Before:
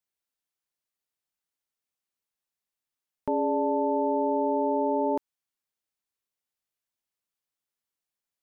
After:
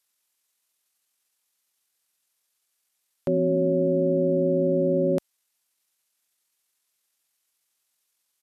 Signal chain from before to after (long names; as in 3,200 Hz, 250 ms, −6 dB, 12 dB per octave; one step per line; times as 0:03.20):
spectral tilt +2.5 dB per octave
pitch shifter −8 semitones
level +6 dB